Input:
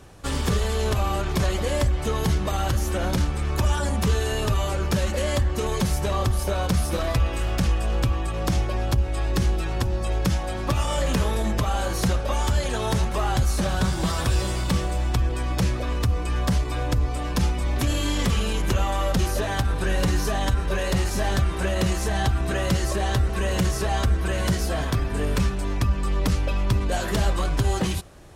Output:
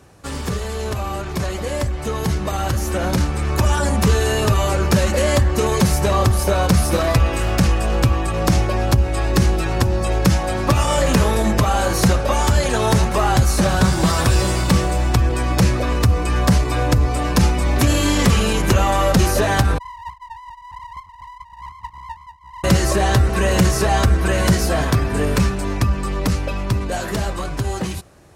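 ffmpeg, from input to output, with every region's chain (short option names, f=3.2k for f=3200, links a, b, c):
-filter_complex "[0:a]asettb=1/sr,asplit=3[a][b][c];[a]atrim=end=19.784[d];[b]atrim=start=19.78:end=22.64,asetpts=PTS-STARTPTS,afade=t=in:d=0.004:c=qsin,afade=t=out:st=2.856:d=0.004:c=qsin,acontrast=66,asuperpass=centerf=490:order=20:qfactor=5.9,aeval=exprs='abs(val(0))':c=same[e];[c]atrim=start=22.636[f];[d][e]acrossfade=d=0.004:c1=hsin:c2=qsin[g];[g][f]acrossfade=d=0.004:c1=qsin:c2=hsin,highpass=64,equalizer=f=3.3k:w=3.9:g=-4.5,dynaudnorm=f=680:g=9:m=11.5dB"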